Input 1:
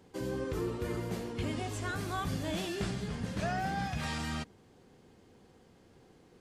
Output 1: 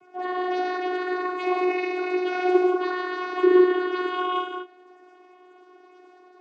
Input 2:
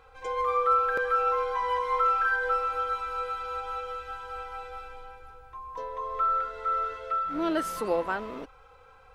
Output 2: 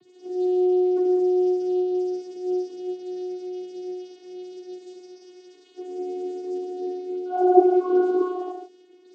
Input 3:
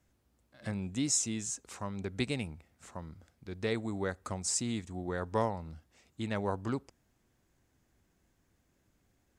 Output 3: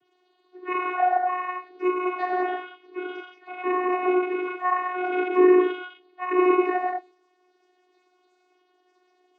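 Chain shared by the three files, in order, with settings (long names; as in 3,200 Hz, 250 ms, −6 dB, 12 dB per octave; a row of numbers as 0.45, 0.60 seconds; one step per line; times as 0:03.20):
frequency axis turned over on the octave scale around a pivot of 470 Hz
reverb whose tail is shaped and stops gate 230 ms flat, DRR −1.5 dB
channel vocoder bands 16, saw 364 Hz
loudness normalisation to −24 LKFS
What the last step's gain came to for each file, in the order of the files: +12.0, +3.0, +12.0 decibels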